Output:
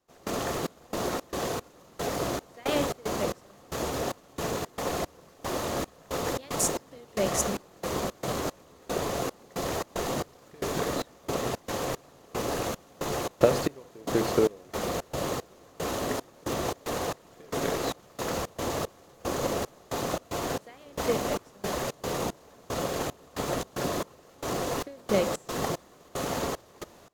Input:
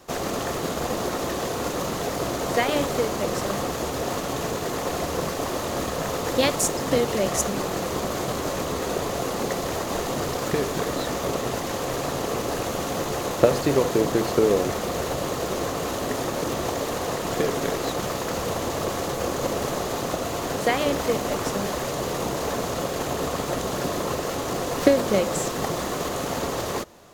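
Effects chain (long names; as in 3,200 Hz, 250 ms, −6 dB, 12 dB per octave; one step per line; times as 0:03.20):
gate pattern "..xxx..xx.xx." 113 BPM −24 dB
level −3 dB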